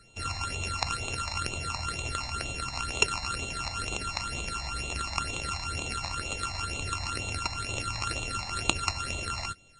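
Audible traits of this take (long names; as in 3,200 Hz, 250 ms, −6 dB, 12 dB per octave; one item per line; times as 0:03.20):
a buzz of ramps at a fixed pitch in blocks of 32 samples
phaser sweep stages 8, 2.1 Hz, lowest notch 410–1,600 Hz
MP3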